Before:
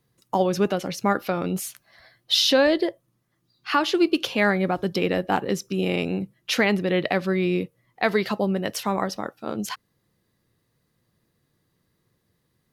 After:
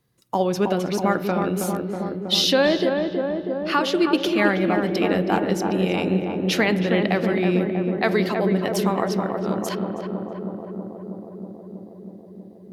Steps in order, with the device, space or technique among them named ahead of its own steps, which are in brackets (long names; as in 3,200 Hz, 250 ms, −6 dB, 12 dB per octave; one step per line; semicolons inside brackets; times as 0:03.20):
dub delay into a spring reverb (feedback echo with a low-pass in the loop 321 ms, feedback 84%, low-pass 1,200 Hz, level −4 dB; spring reverb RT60 2.3 s, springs 33 ms, chirp 20 ms, DRR 13.5 dB)